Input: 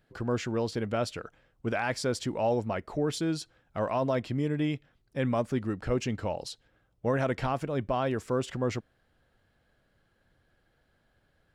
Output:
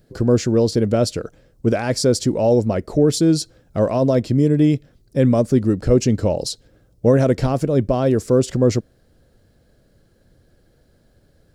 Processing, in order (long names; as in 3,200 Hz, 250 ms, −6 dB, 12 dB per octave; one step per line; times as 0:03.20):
in parallel at −0.5 dB: speech leveller within 4 dB 0.5 s
on the sum: flat-topped bell 1,600 Hz −11.5 dB 2.5 octaves
level +8.5 dB